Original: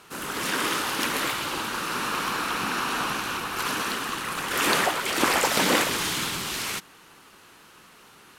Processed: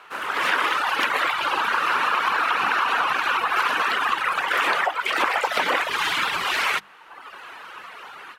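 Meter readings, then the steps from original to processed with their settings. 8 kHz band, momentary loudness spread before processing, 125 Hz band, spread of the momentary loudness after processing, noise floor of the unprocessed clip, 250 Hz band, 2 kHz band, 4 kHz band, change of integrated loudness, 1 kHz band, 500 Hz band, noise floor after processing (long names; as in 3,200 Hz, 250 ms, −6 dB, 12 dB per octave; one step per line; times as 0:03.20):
−9.5 dB, 8 LU, below −10 dB, 18 LU, −52 dBFS, −8.0 dB, +6.0 dB, +0.5 dB, +4.0 dB, +6.5 dB, 0.0 dB, −47 dBFS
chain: automatic gain control gain up to 10.5 dB
reverb reduction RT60 1.1 s
three-way crossover with the lows and the highs turned down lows −19 dB, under 540 Hz, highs −19 dB, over 3,000 Hz
downward compressor, threshold −26 dBFS, peak gain reduction 9.5 dB
mains-hum notches 50/100/150/200 Hz
level +7.5 dB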